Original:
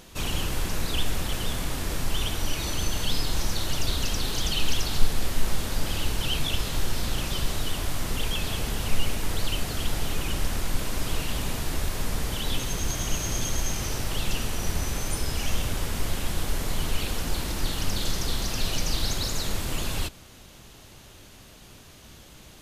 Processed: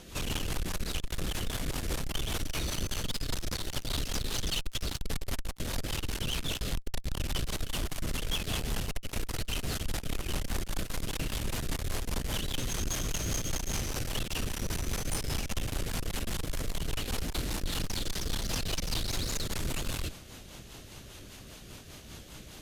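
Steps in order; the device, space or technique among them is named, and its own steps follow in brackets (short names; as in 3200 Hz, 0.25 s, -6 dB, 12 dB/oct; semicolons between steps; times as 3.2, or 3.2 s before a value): 6.71–7.36 low shelf 71 Hz +9.5 dB; overdriven rotary cabinet (tube stage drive 30 dB, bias 0.3; rotary speaker horn 5 Hz); gain +4 dB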